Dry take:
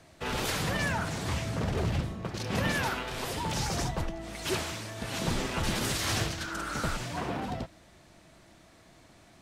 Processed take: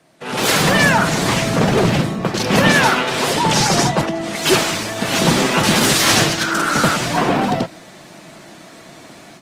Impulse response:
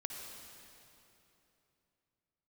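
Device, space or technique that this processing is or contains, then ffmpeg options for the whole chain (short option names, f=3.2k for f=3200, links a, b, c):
video call: -filter_complex "[0:a]asettb=1/sr,asplit=3[a][b][c];[a]atrim=end=2.634[d];[b]atrim=start=2.63:end=4.36,asetpts=PTS-STARTPTS,afade=t=in:d=0.004:c=qsin,afade=t=out:st=1.726:d=0.004:c=qsin,lowpass=11k[e];[c]atrim=start=4.356[f];[d][e]acrossfade=d=0.004:c1=hsin:c2=qsin[g];[g][f]acrossfade=d=0.004:c1=qsin:c2=hsin,highpass=f=140:w=0.5412,highpass=f=140:w=1.3066,dynaudnorm=f=260:g=3:m=15.5dB,volume=2.5dB" -ar 48000 -c:a libopus -b:a 24k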